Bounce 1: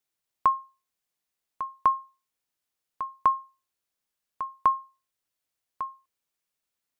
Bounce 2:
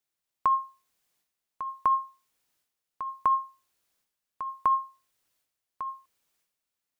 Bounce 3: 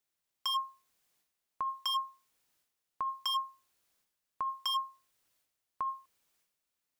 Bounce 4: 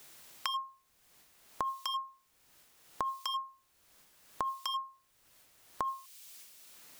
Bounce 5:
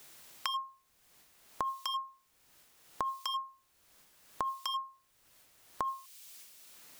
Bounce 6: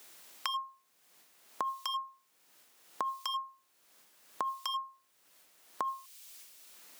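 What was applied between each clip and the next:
transient shaper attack -2 dB, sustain +10 dB; gain -1.5 dB
wavefolder -26 dBFS
three-band squash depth 100%
nothing audible
HPF 220 Hz 12 dB/oct

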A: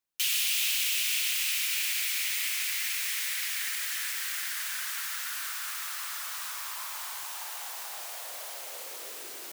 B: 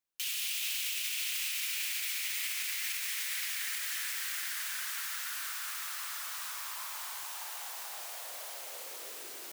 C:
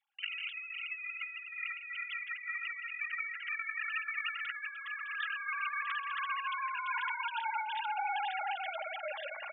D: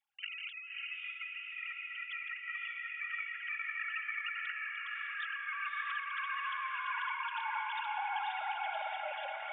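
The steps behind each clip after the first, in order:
limiter -22 dBFS, peak gain reduction 7 dB; gain -3 dB
sine-wave speech; comb 3.6 ms, depth 83%; negative-ratio compressor -38 dBFS, ratio -0.5; gain +1 dB
diffused feedback echo 0.594 s, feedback 53%, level -3 dB; gain -3.5 dB

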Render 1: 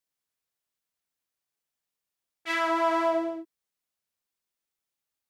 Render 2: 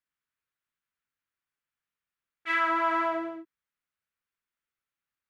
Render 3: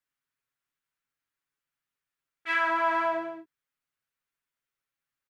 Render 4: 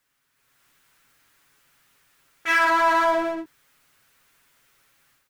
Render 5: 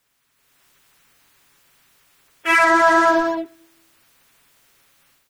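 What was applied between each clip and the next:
EQ curve 120 Hz 0 dB, 740 Hz -7 dB, 1400 Hz +5 dB, 2500 Hz 0 dB, 5200 Hz -11 dB
comb 7.3 ms, depth 51%
power-law curve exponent 0.7; AGC gain up to 11 dB; gain -6 dB
bin magnitudes rounded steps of 30 dB; on a send at -22 dB: reverb RT60 0.90 s, pre-delay 3 ms; on the sum: gain +5.5 dB

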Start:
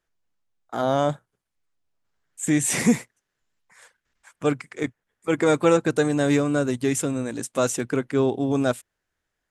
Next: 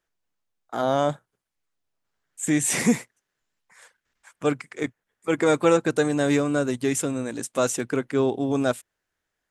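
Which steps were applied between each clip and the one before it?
low shelf 150 Hz -5.5 dB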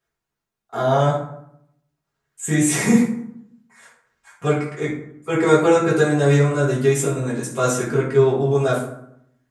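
reverb RT60 0.75 s, pre-delay 3 ms, DRR -8.5 dB; gain -4.5 dB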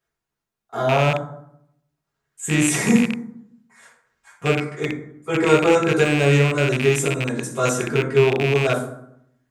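rattling part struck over -23 dBFS, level -12 dBFS; gain -1 dB

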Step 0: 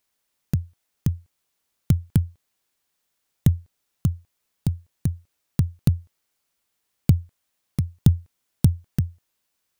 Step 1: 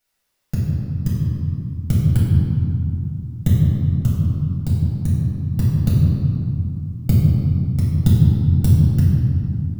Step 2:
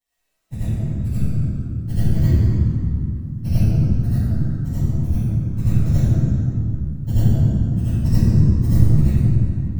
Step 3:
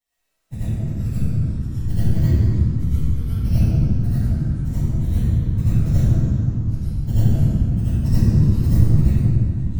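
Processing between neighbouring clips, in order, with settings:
reverb RT60 2.9 s, pre-delay 3 ms, DRR -8 dB; gain -5 dB
inharmonic rescaling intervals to 115%; digital reverb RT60 0.65 s, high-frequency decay 0.4×, pre-delay 45 ms, DRR -9 dB; gain -3.5 dB
echoes that change speed 0.131 s, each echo -6 st, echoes 3, each echo -6 dB; gain -1 dB

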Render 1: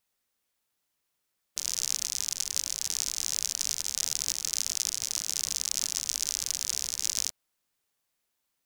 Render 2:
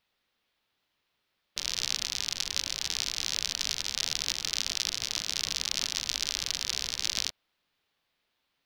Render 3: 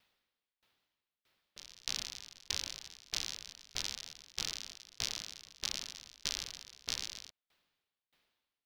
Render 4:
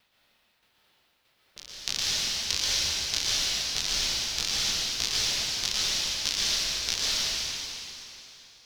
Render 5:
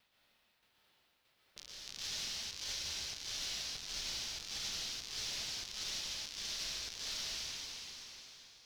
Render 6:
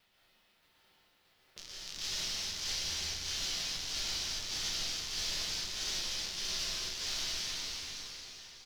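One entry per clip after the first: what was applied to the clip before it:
resonant high shelf 5500 Hz -13.5 dB, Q 1.5; gain +5.5 dB
limiter -18.5 dBFS, peak gain reduction 11.5 dB; dB-ramp tremolo decaying 1.6 Hz, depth 29 dB; gain +5.5 dB
reverb RT60 3.2 s, pre-delay 0.109 s, DRR -7.5 dB; gain +6 dB
limiter -18.5 dBFS, peak gain reduction 11.5 dB; compressor 1.5:1, threshold -41 dBFS, peak gain reduction 5.5 dB; gain -6 dB
echo 0.369 s -7.5 dB; shoebox room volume 47 m³, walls mixed, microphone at 0.5 m; gain +2 dB

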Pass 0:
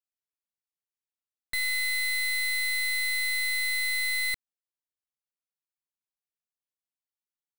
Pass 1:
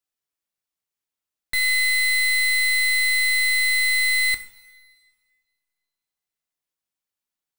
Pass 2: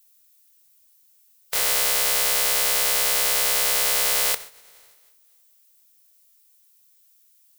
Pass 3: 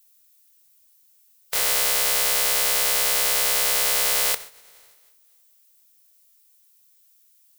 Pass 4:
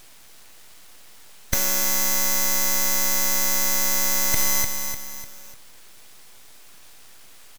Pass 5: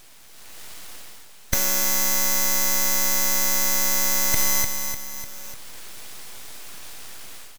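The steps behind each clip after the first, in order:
two-slope reverb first 0.63 s, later 2 s, from -16 dB, DRR 8 dB; gain +5.5 dB
spectral contrast lowered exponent 0.17; resonant low shelf 370 Hz -6.5 dB, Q 3; added noise violet -58 dBFS; gain -1 dB
nothing audible
full-wave rectifier; on a send: feedback echo 0.299 s, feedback 41%, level -12 dB; on the sum: maximiser +13 dB; gain -1 dB
AGC gain up to 10 dB; gain -1 dB

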